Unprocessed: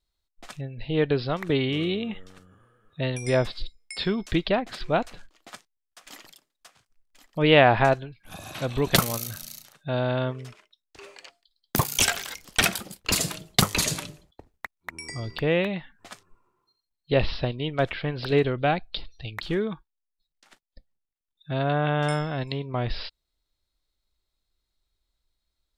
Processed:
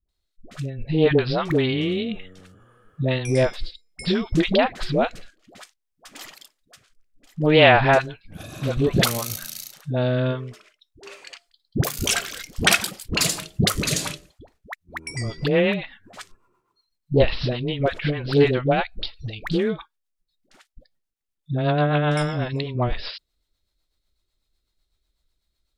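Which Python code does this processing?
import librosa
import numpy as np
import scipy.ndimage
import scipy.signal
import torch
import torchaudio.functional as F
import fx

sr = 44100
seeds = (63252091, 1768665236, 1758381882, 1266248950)

y = fx.dispersion(x, sr, late='highs', ms=87.0, hz=490.0)
y = fx.rotary_switch(y, sr, hz=0.6, then_hz=8.0, switch_at_s=13.8)
y = fx.doppler_dist(y, sr, depth_ms=0.16)
y = y * librosa.db_to_amplitude(6.0)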